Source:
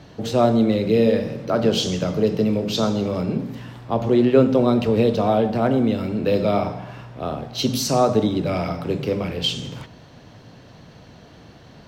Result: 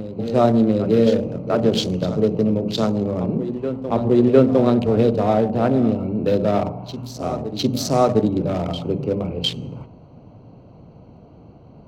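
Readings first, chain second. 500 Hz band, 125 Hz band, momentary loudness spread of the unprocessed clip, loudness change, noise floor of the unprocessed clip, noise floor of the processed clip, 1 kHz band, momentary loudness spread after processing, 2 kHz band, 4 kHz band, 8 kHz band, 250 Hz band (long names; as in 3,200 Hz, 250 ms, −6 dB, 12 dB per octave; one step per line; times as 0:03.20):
+1.0 dB, +1.5 dB, 12 LU, +1.0 dB, −46 dBFS, −45 dBFS, +0.5 dB, 10 LU, −3.0 dB, −1.5 dB, −3.5 dB, +1.5 dB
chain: adaptive Wiener filter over 25 samples
backwards echo 706 ms −12 dB
level +1.5 dB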